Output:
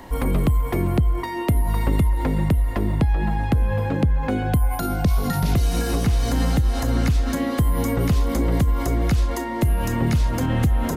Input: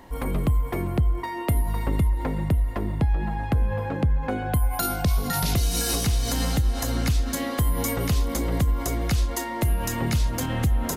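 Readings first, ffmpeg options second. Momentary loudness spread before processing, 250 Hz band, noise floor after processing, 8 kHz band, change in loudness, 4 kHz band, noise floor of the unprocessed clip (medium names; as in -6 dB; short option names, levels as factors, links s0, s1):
3 LU, +5.5 dB, -27 dBFS, -5.0 dB, +3.5 dB, -2.5 dB, -31 dBFS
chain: -filter_complex "[0:a]acrossover=split=420|2400[s0][s1][s2];[s0]acompressor=threshold=0.0708:ratio=4[s3];[s1]acompressor=threshold=0.0141:ratio=4[s4];[s2]acompressor=threshold=0.00562:ratio=4[s5];[s3][s4][s5]amix=inputs=3:normalize=0,volume=2.24"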